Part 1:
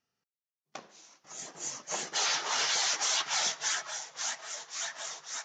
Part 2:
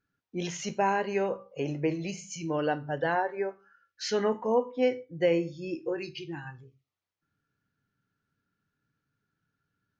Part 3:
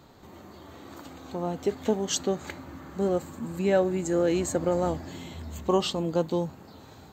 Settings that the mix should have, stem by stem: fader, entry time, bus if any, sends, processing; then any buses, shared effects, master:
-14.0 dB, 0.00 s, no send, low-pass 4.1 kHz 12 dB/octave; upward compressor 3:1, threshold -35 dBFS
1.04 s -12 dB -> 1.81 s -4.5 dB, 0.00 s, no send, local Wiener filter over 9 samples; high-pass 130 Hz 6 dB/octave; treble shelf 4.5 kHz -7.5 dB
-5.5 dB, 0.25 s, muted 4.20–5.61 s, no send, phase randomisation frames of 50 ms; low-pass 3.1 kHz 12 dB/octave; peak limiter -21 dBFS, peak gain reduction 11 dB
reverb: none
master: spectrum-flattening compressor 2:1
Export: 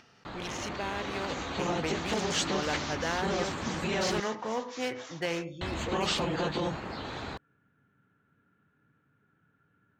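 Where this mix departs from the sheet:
stem 1 -14.0 dB -> -23.5 dB; stem 3 -5.5 dB -> +1.0 dB

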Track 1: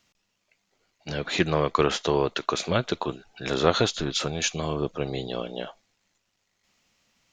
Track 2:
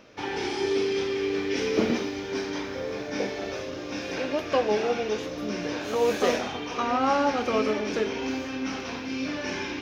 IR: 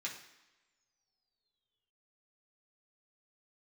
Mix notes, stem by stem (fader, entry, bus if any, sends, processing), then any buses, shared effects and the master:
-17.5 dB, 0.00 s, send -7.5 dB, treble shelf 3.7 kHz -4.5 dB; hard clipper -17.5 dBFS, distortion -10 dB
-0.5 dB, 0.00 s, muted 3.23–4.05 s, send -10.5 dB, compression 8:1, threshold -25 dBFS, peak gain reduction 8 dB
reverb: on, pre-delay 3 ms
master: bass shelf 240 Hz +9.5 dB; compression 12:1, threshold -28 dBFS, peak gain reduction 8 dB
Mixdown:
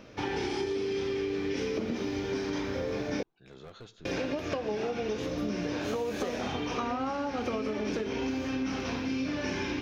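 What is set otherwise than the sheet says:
stem 1 -17.5 dB -> -27.0 dB; stem 2: send off

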